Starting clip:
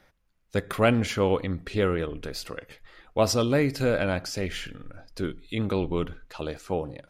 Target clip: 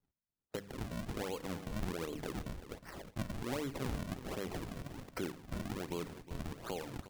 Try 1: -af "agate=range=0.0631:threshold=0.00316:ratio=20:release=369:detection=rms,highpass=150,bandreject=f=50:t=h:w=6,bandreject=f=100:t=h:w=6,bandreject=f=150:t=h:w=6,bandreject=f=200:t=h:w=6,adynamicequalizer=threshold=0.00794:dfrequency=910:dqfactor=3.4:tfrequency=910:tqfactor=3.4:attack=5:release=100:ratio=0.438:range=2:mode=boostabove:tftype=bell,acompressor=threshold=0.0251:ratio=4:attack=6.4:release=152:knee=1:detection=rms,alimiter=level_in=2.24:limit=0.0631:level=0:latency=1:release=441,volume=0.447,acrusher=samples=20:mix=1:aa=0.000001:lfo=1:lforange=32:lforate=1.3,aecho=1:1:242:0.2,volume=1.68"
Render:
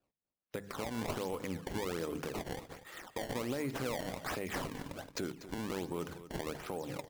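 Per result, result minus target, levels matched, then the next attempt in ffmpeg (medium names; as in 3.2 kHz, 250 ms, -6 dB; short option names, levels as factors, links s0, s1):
compression: peak gain reduction -6.5 dB; echo 121 ms early; decimation with a swept rate: distortion -8 dB
-af "agate=range=0.0631:threshold=0.00316:ratio=20:release=369:detection=rms,highpass=150,bandreject=f=50:t=h:w=6,bandreject=f=100:t=h:w=6,bandreject=f=150:t=h:w=6,bandreject=f=200:t=h:w=6,adynamicequalizer=threshold=0.00794:dfrequency=910:dqfactor=3.4:tfrequency=910:tqfactor=3.4:attack=5:release=100:ratio=0.438:range=2:mode=boostabove:tftype=bell,acompressor=threshold=0.00891:ratio=4:attack=6.4:release=152:knee=1:detection=rms,alimiter=level_in=2.24:limit=0.0631:level=0:latency=1:release=441,volume=0.447,acrusher=samples=20:mix=1:aa=0.000001:lfo=1:lforange=32:lforate=1.3,aecho=1:1:242:0.2,volume=1.68"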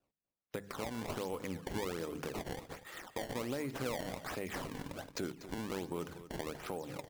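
echo 121 ms early; decimation with a swept rate: distortion -8 dB
-af "agate=range=0.0631:threshold=0.00316:ratio=20:release=369:detection=rms,highpass=150,bandreject=f=50:t=h:w=6,bandreject=f=100:t=h:w=6,bandreject=f=150:t=h:w=6,bandreject=f=200:t=h:w=6,adynamicequalizer=threshold=0.00794:dfrequency=910:dqfactor=3.4:tfrequency=910:tqfactor=3.4:attack=5:release=100:ratio=0.438:range=2:mode=boostabove:tftype=bell,acompressor=threshold=0.00891:ratio=4:attack=6.4:release=152:knee=1:detection=rms,alimiter=level_in=2.24:limit=0.0631:level=0:latency=1:release=441,volume=0.447,acrusher=samples=20:mix=1:aa=0.000001:lfo=1:lforange=32:lforate=1.3,aecho=1:1:363:0.2,volume=1.68"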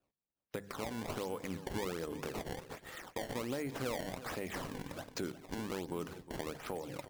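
decimation with a swept rate: distortion -8 dB
-af "agate=range=0.0631:threshold=0.00316:ratio=20:release=369:detection=rms,highpass=150,bandreject=f=50:t=h:w=6,bandreject=f=100:t=h:w=6,bandreject=f=150:t=h:w=6,bandreject=f=200:t=h:w=6,adynamicequalizer=threshold=0.00794:dfrequency=910:dqfactor=3.4:tfrequency=910:tqfactor=3.4:attack=5:release=100:ratio=0.438:range=2:mode=boostabove:tftype=bell,acompressor=threshold=0.00891:ratio=4:attack=6.4:release=152:knee=1:detection=rms,alimiter=level_in=2.24:limit=0.0631:level=0:latency=1:release=441,volume=0.447,acrusher=samples=60:mix=1:aa=0.000001:lfo=1:lforange=96:lforate=1.3,aecho=1:1:363:0.2,volume=1.68"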